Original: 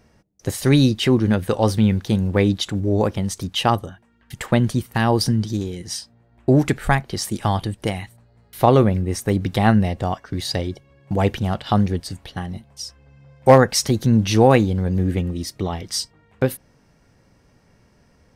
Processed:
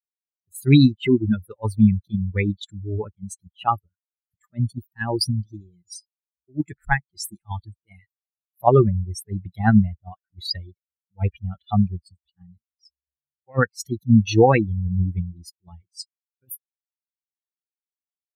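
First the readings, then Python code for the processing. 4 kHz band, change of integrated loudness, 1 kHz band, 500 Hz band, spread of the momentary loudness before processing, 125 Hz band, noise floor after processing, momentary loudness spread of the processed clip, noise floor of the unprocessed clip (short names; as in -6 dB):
-6.5 dB, -2.0 dB, -4.5 dB, -5.0 dB, 16 LU, -2.5 dB, under -85 dBFS, 22 LU, -58 dBFS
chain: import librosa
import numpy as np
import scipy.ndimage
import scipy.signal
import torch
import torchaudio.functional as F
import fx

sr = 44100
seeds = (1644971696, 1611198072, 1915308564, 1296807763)

y = fx.bin_expand(x, sr, power=3.0)
y = fx.attack_slew(y, sr, db_per_s=570.0)
y = y * 10.0 ** (5.5 / 20.0)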